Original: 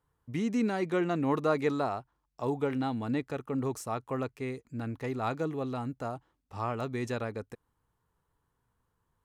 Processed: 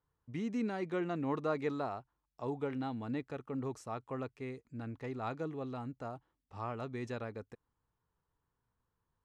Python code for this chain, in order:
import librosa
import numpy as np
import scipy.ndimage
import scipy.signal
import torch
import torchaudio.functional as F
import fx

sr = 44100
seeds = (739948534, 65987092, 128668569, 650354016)

y = fx.air_absorb(x, sr, metres=61.0)
y = F.gain(torch.from_numpy(y), -6.5).numpy()